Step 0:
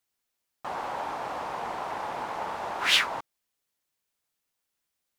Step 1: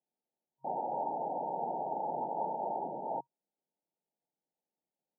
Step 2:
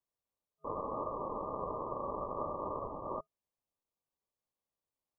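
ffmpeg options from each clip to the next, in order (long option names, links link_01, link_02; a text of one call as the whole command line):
ffmpeg -i in.wav -af "afftfilt=real='re*between(b*sr/4096,130,940)':imag='im*between(b*sr/4096,130,940)':win_size=4096:overlap=0.75" out.wav
ffmpeg -i in.wav -af "aeval=exprs='val(0)*sin(2*PI*290*n/s)':channel_layout=same" out.wav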